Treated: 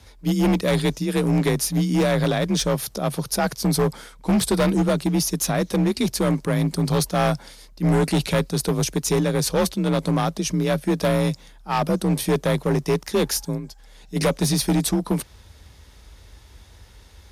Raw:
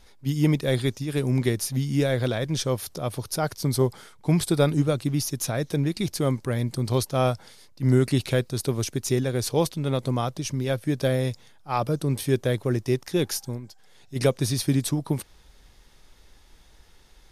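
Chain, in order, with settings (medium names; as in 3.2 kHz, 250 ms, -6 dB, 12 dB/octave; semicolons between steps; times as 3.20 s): frequency shift +37 Hz; hard clipper -20.5 dBFS, distortion -10 dB; trim +5.5 dB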